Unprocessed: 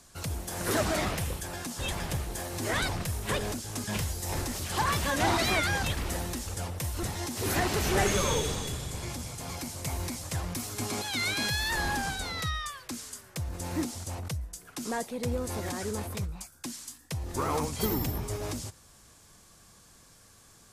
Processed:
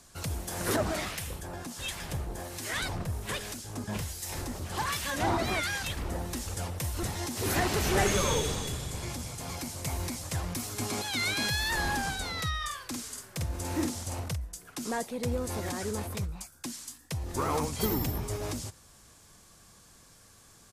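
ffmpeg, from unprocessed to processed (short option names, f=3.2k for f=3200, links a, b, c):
-filter_complex "[0:a]asettb=1/sr,asplit=3[a][b][c];[a]atrim=end=0.764[d];[b]atrim=start=0.76:end=6.33,asetpts=PTS-STARTPTS,afade=t=in:d=0.004:c=qsin,afade=t=out:st=5.566:d=0.004:c=qsin,acrossover=split=1400[e][f];[e]aeval=exprs='val(0)*(1-0.7/2+0.7/2*cos(2*PI*1.3*n/s))':c=same[g];[f]aeval=exprs='val(0)*(1-0.7/2-0.7/2*cos(2*PI*1.3*n/s))':c=same[h];[g][h]amix=inputs=2:normalize=0[i];[c]atrim=start=6.326[j];[d][i]acrossfade=d=0.004:c1=hsin:c2=qsin[k];[k][j]acrossfade=d=0.004:c1=qsin:c2=hsin,asplit=3[l][m][n];[l]afade=t=out:st=12.6:d=0.02[o];[m]asplit=2[p][q];[q]adelay=49,volume=-3dB[r];[p][r]amix=inputs=2:normalize=0,afade=t=in:st=12.6:d=0.02,afade=t=out:st=14.34:d=0.02[s];[n]afade=t=in:st=14.34:d=0.02[t];[o][s][t]amix=inputs=3:normalize=0"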